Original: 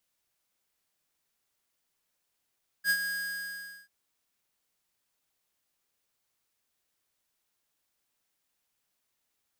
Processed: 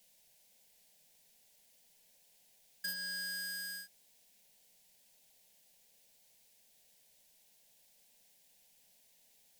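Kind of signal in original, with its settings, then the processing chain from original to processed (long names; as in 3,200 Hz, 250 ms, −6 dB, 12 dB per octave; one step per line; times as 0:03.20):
note with an ADSR envelope square 1,640 Hz, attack 60 ms, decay 65 ms, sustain −8.5 dB, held 0.21 s, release 830 ms −24 dBFS
phaser with its sweep stopped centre 330 Hz, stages 6
in parallel at −9 dB: sine wavefolder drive 16 dB, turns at −20 dBFS
on the sum: downward compressor 10 to 1, threshold −36 dBFS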